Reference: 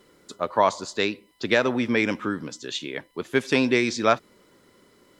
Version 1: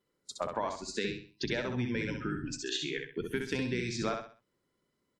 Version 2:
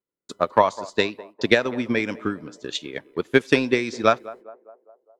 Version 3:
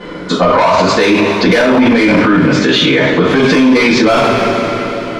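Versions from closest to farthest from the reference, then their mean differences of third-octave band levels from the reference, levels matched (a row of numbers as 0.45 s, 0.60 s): 2, 1, 3; 4.0 dB, 7.0 dB, 9.5 dB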